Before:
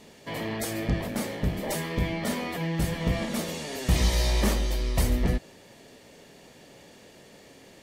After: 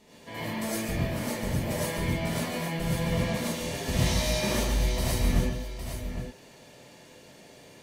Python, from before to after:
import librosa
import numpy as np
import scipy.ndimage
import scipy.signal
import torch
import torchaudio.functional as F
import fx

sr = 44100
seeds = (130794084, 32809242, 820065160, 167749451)

y = fx.echo_multitap(x, sr, ms=(141, 812), db=(-7.5, -8.5))
y = fx.rev_gated(y, sr, seeds[0], gate_ms=140, shape='rising', drr_db=-7.0)
y = F.gain(torch.from_numpy(y), -8.5).numpy()